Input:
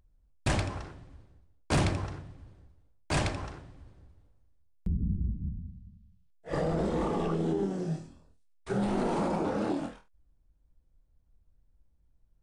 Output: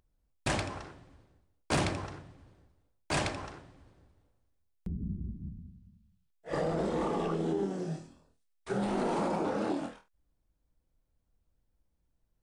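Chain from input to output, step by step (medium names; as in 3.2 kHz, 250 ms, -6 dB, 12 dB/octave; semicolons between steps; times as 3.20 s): bass shelf 130 Hz -11 dB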